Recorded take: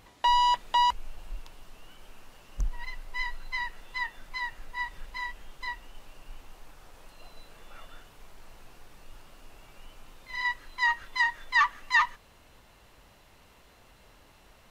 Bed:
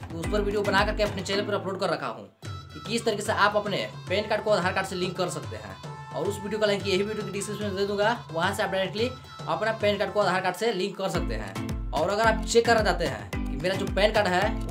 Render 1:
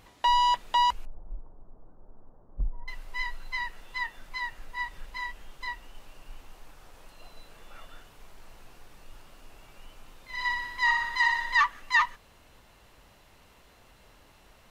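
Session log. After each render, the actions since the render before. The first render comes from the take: 1.05–2.88 Gaussian blur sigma 9.6 samples; 10.32–11.61 flutter echo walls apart 10.4 m, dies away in 0.98 s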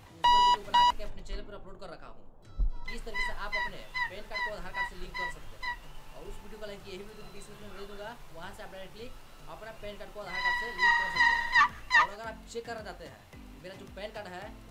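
add bed -19 dB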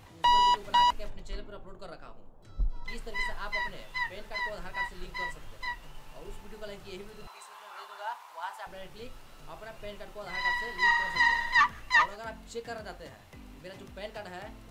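7.27–8.67 resonant high-pass 930 Hz, resonance Q 3.9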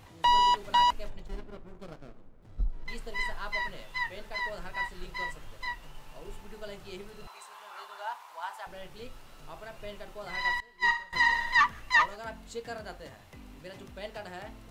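1.26–2.88 running maximum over 33 samples; 10.6–11.13 upward expander 2.5:1, over -34 dBFS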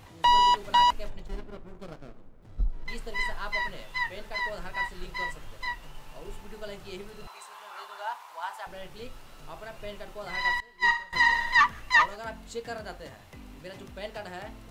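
gain +2.5 dB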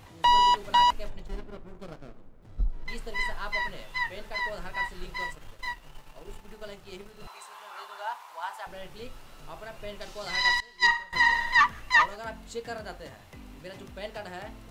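5.19–7.21 G.711 law mismatch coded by A; 10.01–10.87 bell 5300 Hz +12.5 dB 1.5 oct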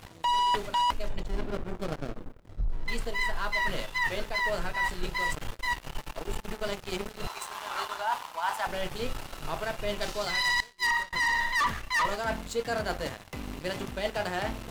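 sample leveller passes 3; reverse; compressor 6:1, threshold -26 dBFS, peak gain reduction 13 dB; reverse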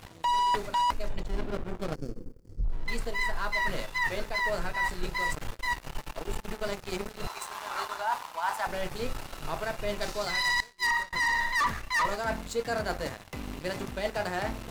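1.95–2.64 spectral gain 540–4300 Hz -14 dB; dynamic EQ 3100 Hz, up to -6 dB, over -51 dBFS, Q 4.2

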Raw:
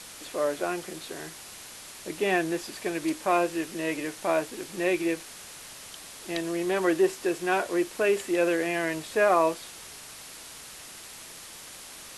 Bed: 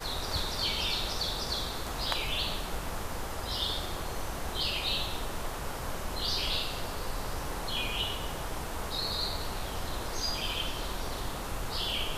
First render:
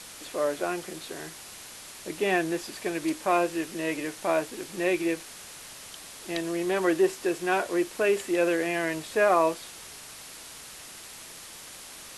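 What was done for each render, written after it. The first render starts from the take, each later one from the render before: nothing audible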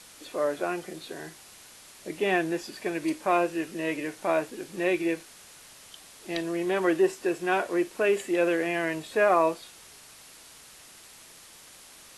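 noise print and reduce 6 dB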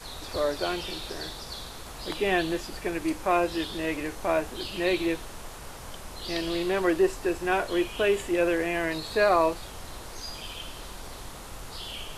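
add bed -6 dB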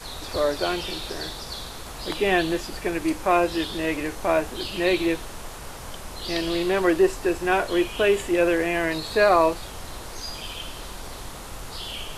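gain +4 dB

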